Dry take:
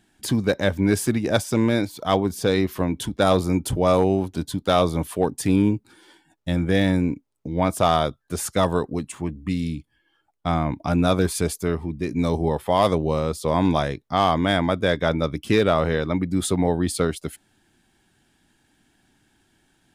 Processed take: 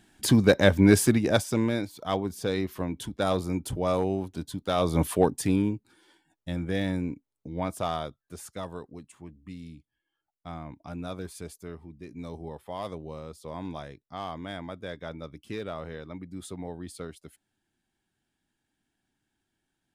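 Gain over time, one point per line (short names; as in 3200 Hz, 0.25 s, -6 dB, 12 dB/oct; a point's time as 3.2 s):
0.97 s +2 dB
1.82 s -8 dB
4.76 s -8 dB
5.05 s +3 dB
5.75 s -9 dB
7.56 s -9 dB
8.67 s -17 dB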